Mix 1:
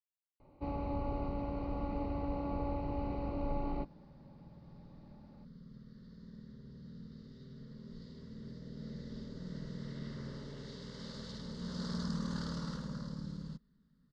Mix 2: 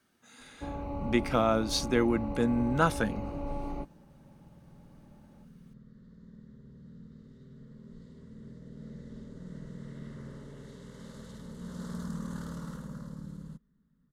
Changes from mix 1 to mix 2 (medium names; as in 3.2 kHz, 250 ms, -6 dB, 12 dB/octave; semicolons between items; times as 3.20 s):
speech: unmuted; first sound: remove distance through air 190 m; master: remove resonant low-pass 4.8 kHz, resonance Q 4.7